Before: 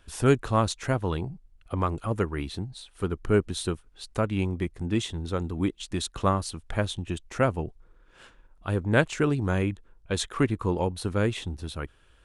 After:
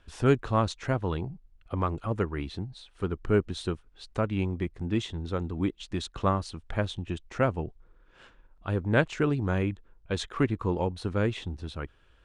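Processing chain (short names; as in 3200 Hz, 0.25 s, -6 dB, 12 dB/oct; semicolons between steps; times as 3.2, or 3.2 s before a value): air absorption 87 m; gain -1.5 dB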